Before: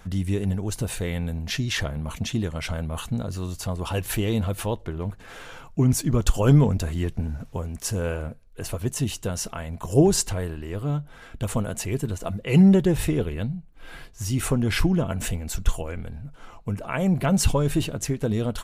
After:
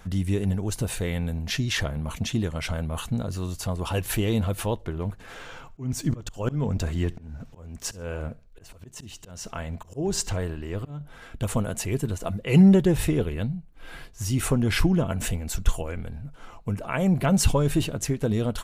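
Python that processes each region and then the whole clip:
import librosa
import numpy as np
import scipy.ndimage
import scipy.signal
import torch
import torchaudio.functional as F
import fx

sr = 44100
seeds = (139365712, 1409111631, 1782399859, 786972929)

y = fx.chain(x, sr, fx.peak_eq(hz=11000.0, db=-11.0, octaves=0.42),
    fx.auto_swell(attack_ms=333.0),
    fx.echo_feedback(ms=69, feedback_pct=32, wet_db=-23), at=(5.34, 11.01))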